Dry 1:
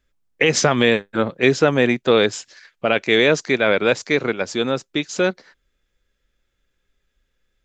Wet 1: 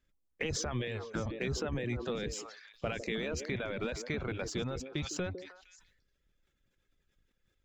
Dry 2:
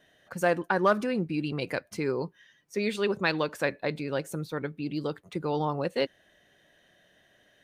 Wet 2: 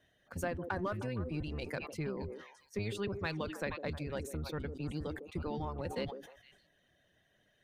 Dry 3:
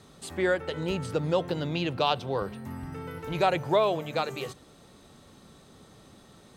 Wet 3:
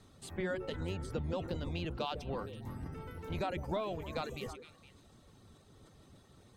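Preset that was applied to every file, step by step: octaver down 1 oct, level +3 dB; in parallel at -11 dB: crossover distortion -32 dBFS; on the sum: limiter -10 dBFS; compressor 2.5:1, threshold -26 dBFS; reverb removal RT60 0.58 s; on a send: delay with a stepping band-pass 0.155 s, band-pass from 380 Hz, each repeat 1.4 oct, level -8.5 dB; on the sum: sustainer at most 73 dB/s; gain -8.5 dB

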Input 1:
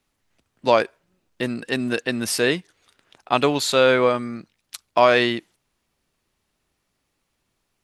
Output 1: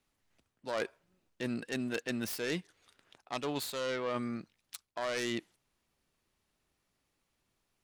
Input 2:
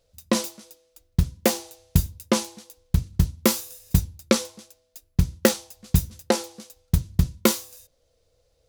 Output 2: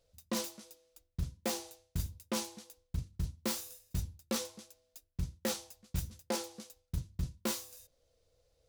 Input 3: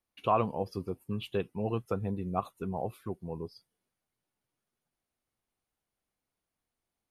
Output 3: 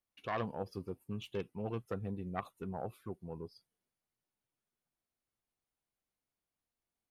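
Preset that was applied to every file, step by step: self-modulated delay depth 0.2 ms; reverse; compressor 16:1, threshold -25 dBFS; reverse; gain -6 dB

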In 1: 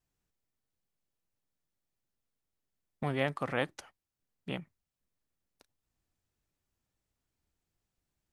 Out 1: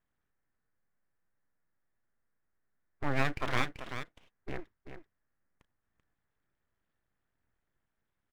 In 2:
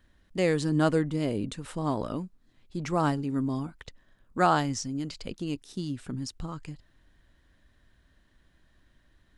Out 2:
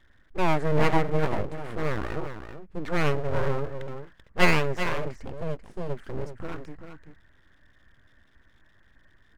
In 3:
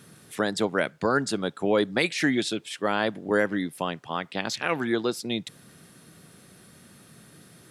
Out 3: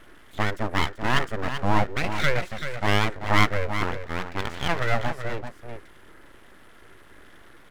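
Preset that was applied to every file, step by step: harmonic-percussive split percussive -9 dB; resonant high shelf 2500 Hz -13 dB, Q 3; echo 0.386 s -9 dB; full-wave rectifier; gain +5.5 dB

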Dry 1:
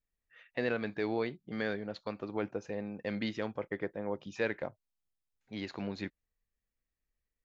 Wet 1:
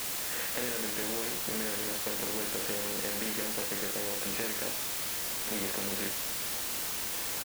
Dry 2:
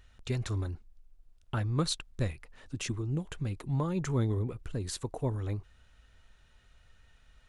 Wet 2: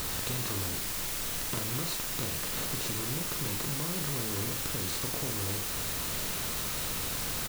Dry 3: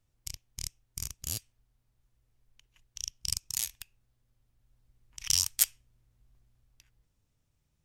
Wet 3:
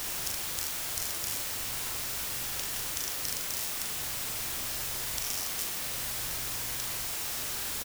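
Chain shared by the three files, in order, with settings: per-bin compression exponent 0.4; bell 110 Hz -3.5 dB 0.22 oct; compressor, threshold -35 dBFS; requantised 6-bit, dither triangular; doubler 41 ms -6 dB

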